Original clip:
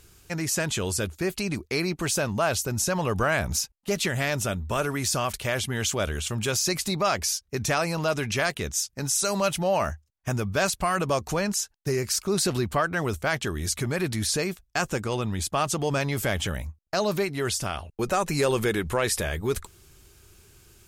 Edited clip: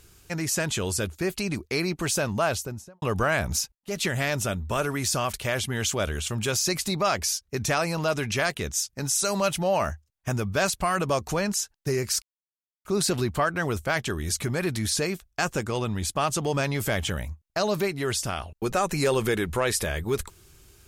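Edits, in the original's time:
0:02.43–0:03.02: fade out and dull
0:03.75–0:04.05: fade in linear
0:12.22: splice in silence 0.63 s

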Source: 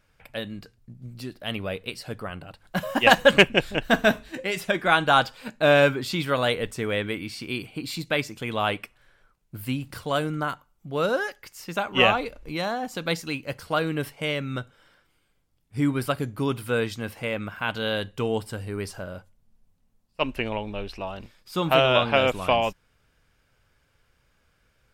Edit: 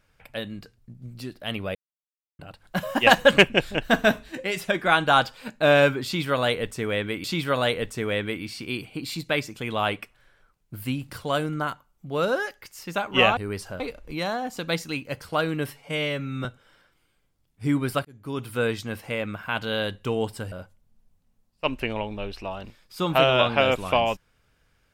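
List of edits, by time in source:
0:01.75–0:02.39: silence
0:06.05–0:07.24: repeat, 2 plays
0:14.08–0:14.58: time-stretch 1.5×
0:16.18–0:16.72: fade in
0:18.65–0:19.08: move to 0:12.18

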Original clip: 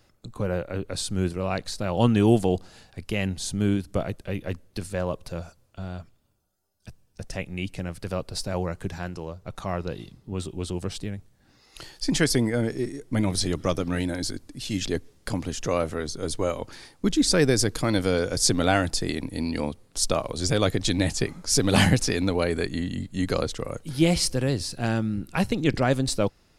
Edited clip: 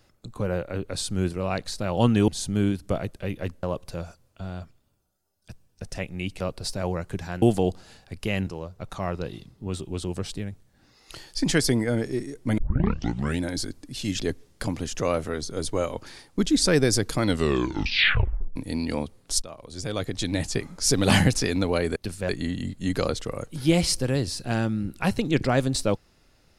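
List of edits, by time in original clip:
0:02.28–0:03.33: move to 0:09.13
0:04.68–0:05.01: move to 0:22.62
0:07.78–0:08.11: remove
0:13.24: tape start 0.82 s
0:17.89: tape stop 1.33 s
0:20.08–0:21.47: fade in, from −19.5 dB

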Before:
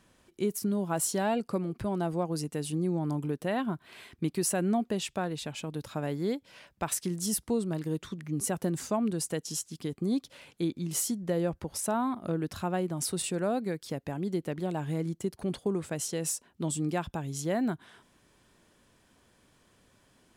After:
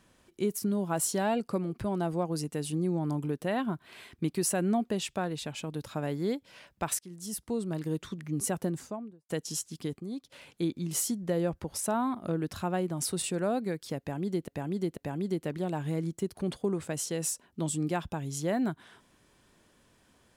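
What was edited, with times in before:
0:06.99–0:07.85: fade in, from −19.5 dB
0:08.49–0:09.29: fade out and dull
0:10.00–0:10.32: clip gain −9 dB
0:13.99–0:14.48: repeat, 3 plays

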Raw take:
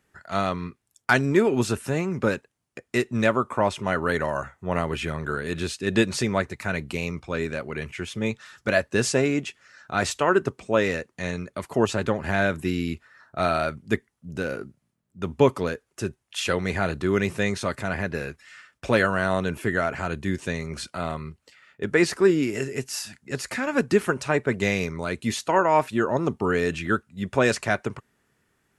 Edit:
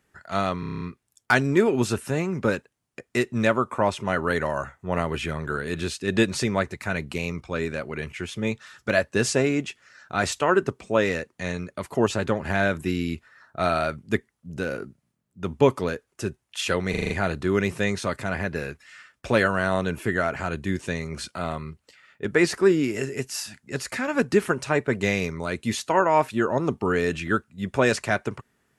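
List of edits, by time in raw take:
0:00.60: stutter 0.03 s, 8 plays
0:16.69: stutter 0.04 s, 6 plays

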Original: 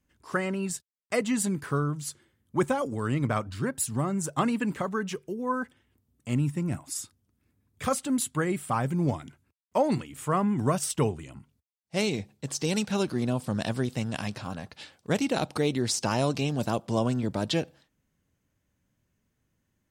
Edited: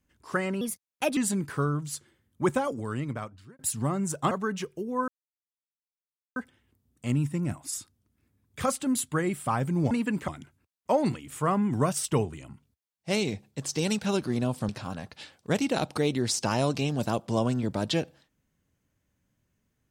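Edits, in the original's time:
0:00.61–0:01.31: play speed 125%
0:02.73–0:03.73: fade out
0:04.45–0:04.82: move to 0:09.14
0:05.59: splice in silence 1.28 s
0:13.55–0:14.29: remove

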